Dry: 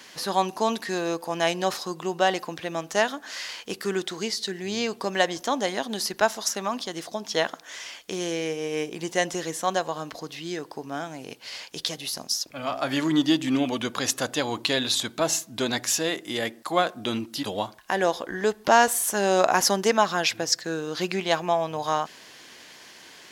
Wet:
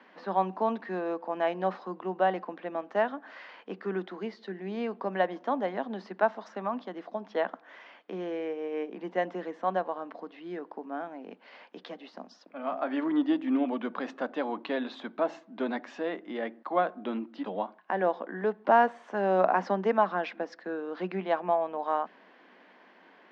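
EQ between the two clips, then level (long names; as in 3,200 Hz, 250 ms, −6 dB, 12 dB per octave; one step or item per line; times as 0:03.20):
Chebyshev high-pass with heavy ripple 180 Hz, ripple 3 dB
low-pass filter 1,800 Hz 12 dB per octave
high-frequency loss of the air 140 metres
−2.0 dB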